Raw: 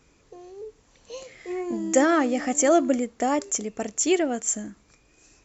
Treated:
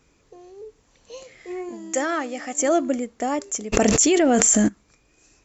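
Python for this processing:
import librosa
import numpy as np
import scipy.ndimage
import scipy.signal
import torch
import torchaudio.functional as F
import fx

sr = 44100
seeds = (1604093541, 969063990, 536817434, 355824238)

y = fx.low_shelf(x, sr, hz=410.0, db=-10.5, at=(1.69, 2.59))
y = fx.env_flatten(y, sr, amount_pct=100, at=(3.72, 4.67), fade=0.02)
y = y * 10.0 ** (-1.0 / 20.0)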